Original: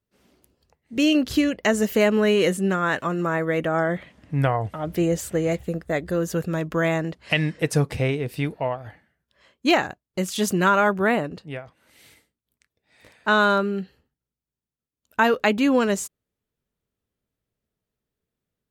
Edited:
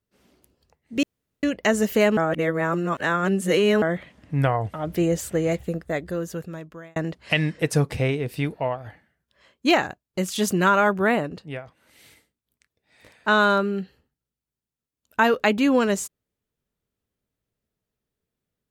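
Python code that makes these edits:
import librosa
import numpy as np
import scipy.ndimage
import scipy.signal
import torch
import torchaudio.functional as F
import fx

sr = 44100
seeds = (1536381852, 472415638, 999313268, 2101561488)

y = fx.edit(x, sr, fx.room_tone_fill(start_s=1.03, length_s=0.4),
    fx.reverse_span(start_s=2.17, length_s=1.65),
    fx.fade_out_span(start_s=5.68, length_s=1.28), tone=tone)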